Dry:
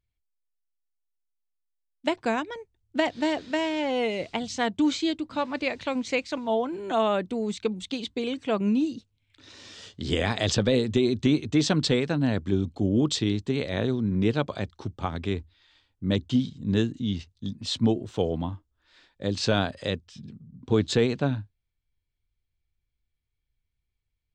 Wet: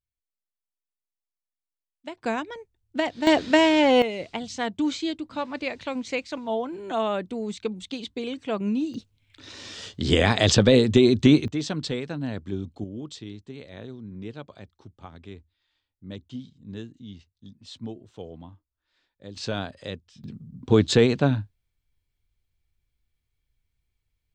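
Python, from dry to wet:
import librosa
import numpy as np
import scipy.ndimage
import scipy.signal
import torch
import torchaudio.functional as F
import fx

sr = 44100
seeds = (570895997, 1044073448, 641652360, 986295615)

y = fx.gain(x, sr, db=fx.steps((0.0, -11.5), (2.22, -1.0), (3.27, 9.0), (4.02, -2.0), (8.94, 6.0), (11.48, -6.0), (12.84, -13.5), (19.36, -6.0), (20.24, 4.5)))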